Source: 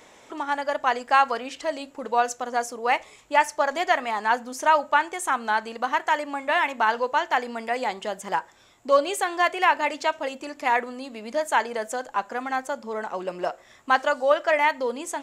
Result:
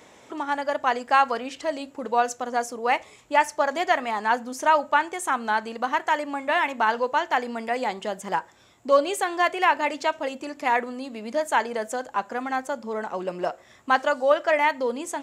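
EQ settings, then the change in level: high-pass 64 Hz; bass shelf 340 Hz +6 dB; -1.0 dB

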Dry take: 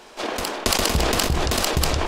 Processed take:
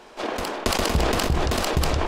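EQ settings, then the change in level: treble shelf 3 kHz -7.5 dB; 0.0 dB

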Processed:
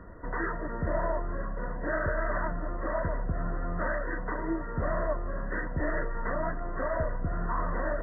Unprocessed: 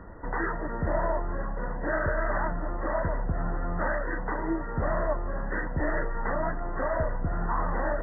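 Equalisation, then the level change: Butterworth band-stop 830 Hz, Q 5.8; -2.0 dB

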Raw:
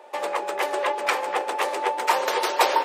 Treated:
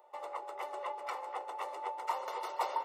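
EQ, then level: Savitzky-Golay filter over 65 samples; differentiator; bass shelf 170 Hz -7 dB; +6.0 dB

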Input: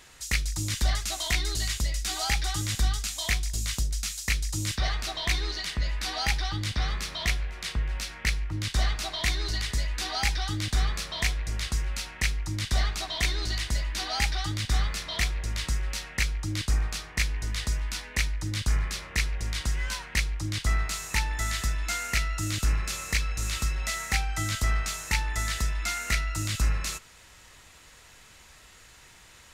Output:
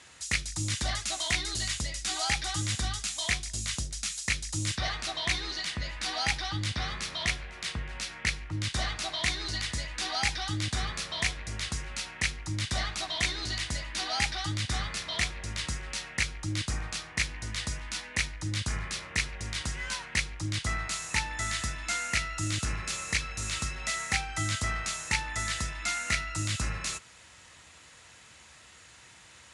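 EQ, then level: high-pass 68 Hz 24 dB/octave; Chebyshev low-pass 11 kHz, order 8; band-stop 410 Hz, Q 12; 0.0 dB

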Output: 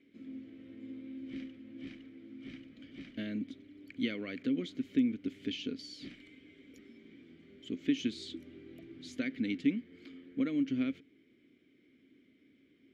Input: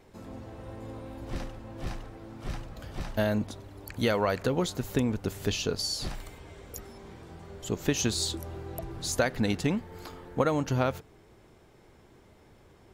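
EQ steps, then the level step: vowel filter i; bass shelf 120 Hz -5 dB; treble shelf 7 kHz -5.5 dB; +5.5 dB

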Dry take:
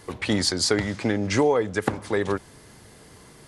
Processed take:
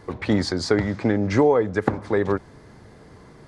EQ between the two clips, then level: tape spacing loss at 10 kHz 20 dB; peaking EQ 2.9 kHz -6 dB 0.55 oct; +4.0 dB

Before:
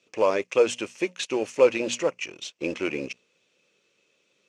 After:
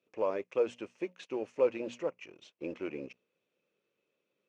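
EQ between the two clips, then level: low-pass 1 kHz 6 dB/octave; bass shelf 170 Hz -3.5 dB; -8.0 dB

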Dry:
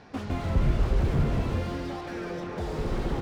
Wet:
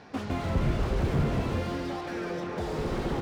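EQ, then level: bass shelf 72 Hz -10 dB; +1.5 dB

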